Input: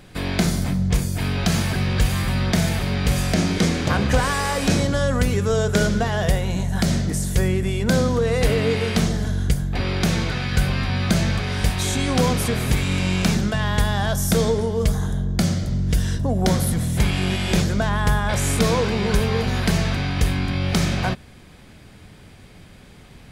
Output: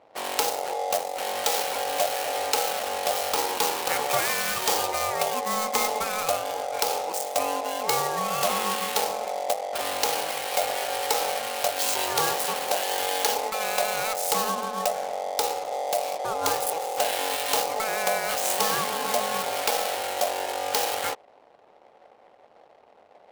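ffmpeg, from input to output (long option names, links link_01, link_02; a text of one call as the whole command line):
ffmpeg -i in.wav -af "aeval=exprs='val(0)*sin(2*PI*650*n/s)':channel_layout=same,adynamicsmooth=sensitivity=7.5:basefreq=520,aemphasis=mode=production:type=riaa,volume=-3.5dB" out.wav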